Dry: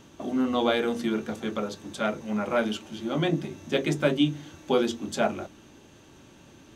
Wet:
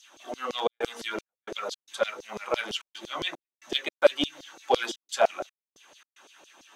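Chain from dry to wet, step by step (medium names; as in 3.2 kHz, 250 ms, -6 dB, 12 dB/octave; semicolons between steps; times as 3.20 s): coarse spectral quantiser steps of 15 dB; high-pass 130 Hz; one-sided clip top -16 dBFS; LFO high-pass saw down 5.9 Hz 430–5400 Hz; trance gate "xxxxx.xxx..xx.xx" 112 bpm -60 dB; trim +1 dB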